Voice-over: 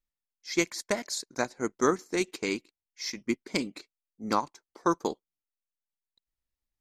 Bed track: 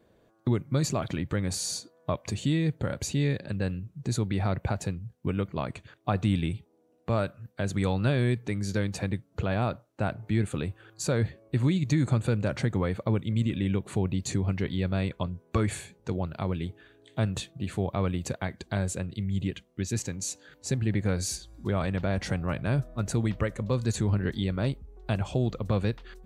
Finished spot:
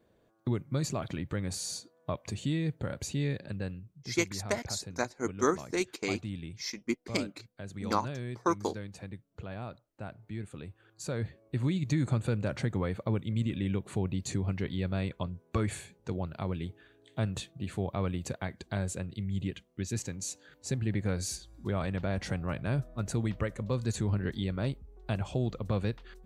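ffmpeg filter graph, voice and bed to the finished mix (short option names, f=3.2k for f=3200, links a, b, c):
-filter_complex "[0:a]adelay=3600,volume=-2.5dB[a];[1:a]volume=4dB,afade=t=out:st=3.48:d=0.52:silence=0.398107,afade=t=in:st=10.57:d=1.34:silence=0.354813[b];[a][b]amix=inputs=2:normalize=0"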